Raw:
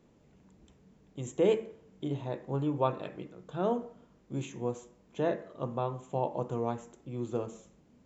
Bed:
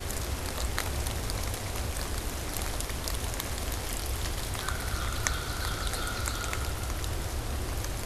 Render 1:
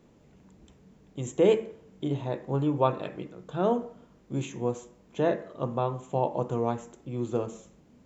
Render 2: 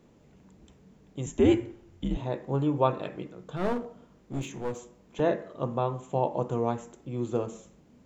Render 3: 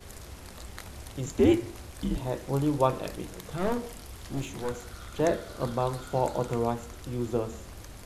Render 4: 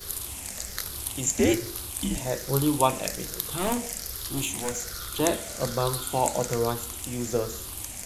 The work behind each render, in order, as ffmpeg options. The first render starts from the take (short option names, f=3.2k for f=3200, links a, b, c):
-af "volume=4.5dB"
-filter_complex "[0:a]asettb=1/sr,asplit=3[a][b][c];[a]atrim=end=1.264[d];[b]atrim=start=1.26:end=2.17,asetpts=PTS-STARTPTS,afade=t=in:d=0.004:c=qsin,afade=t=out:st=0.906:d=0.004:c=qsin,afreqshift=-100[e];[c]atrim=start=2.166[f];[d][e]acrossfade=d=0.004:c1=hsin:c2=qsin[g];[g][f]acrossfade=d=0.004:c1=qsin:c2=hsin,asettb=1/sr,asplit=3[h][i][j];[h]atrim=end=3.564[k];[i]atrim=start=3.56:end=5.2,asetpts=PTS-STARTPTS,afade=t=in:d=0.004:c=qsin,afade=t=out:st=1.636:d=0.004:c=qsin,aeval=exprs='clip(val(0),-1,0.0188)':c=same[l];[j]atrim=start=5.196[m];[k][l]acrossfade=d=0.004:c1=hsin:c2=qsin[n];[n][m]acrossfade=d=0.004:c1=qsin:c2=hsin"
-filter_complex "[1:a]volume=-11.5dB[a];[0:a][a]amix=inputs=2:normalize=0"
-af "afftfilt=real='re*pow(10,7/40*sin(2*PI*(0.59*log(max(b,1)*sr/1024/100)/log(2)-(-1.2)*(pts-256)/sr)))':imag='im*pow(10,7/40*sin(2*PI*(0.59*log(max(b,1)*sr/1024/100)/log(2)-(-1.2)*(pts-256)/sr)))':win_size=1024:overlap=0.75,crystalizer=i=5:c=0"